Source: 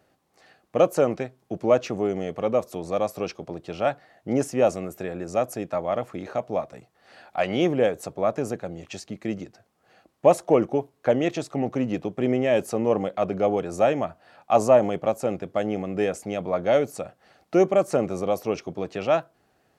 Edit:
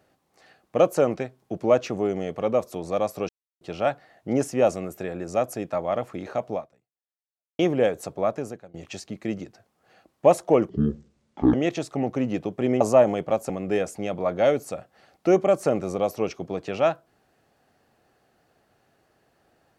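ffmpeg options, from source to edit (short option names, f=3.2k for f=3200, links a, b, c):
-filter_complex "[0:a]asplit=9[a][b][c][d][e][f][g][h][i];[a]atrim=end=3.29,asetpts=PTS-STARTPTS,afade=t=out:st=3.286:d=0.004:c=hsin[j];[b]atrim=start=3.29:end=3.61,asetpts=PTS-STARTPTS,volume=0[k];[c]atrim=start=3.61:end=7.59,asetpts=PTS-STARTPTS,afade=t=in:d=0.004:c=hsin,afade=t=out:st=2.92:d=1.06:c=exp[l];[d]atrim=start=7.59:end=8.74,asetpts=PTS-STARTPTS,afade=t=in:d=0.004:c=hsin,afade=t=out:st=0.62:d=0.53:silence=0.0630957[m];[e]atrim=start=8.74:end=10.694,asetpts=PTS-STARTPTS,afade=t=in:d=0.004:c=hsin:silence=0.0630957[n];[f]atrim=start=10.69:end=11.13,asetpts=PTS-STARTPTS,asetrate=22932,aresample=44100,atrim=end_sample=37315,asetpts=PTS-STARTPTS[o];[g]atrim=start=11.126:end=12.402[p];[h]atrim=start=14.558:end=15.252[q];[i]atrim=start=15.768[r];[j][k][l][m][n]concat=n=5:v=0:a=1[s];[s][o]acrossfade=d=0.004:c1=hsin:c2=hsin[t];[t][p]acrossfade=d=0.004:c1=hsin:c2=hsin[u];[u][q]acrossfade=d=0.004:c1=hsin:c2=hsin[v];[v][r]acrossfade=d=0.004:c1=hsin:c2=hsin"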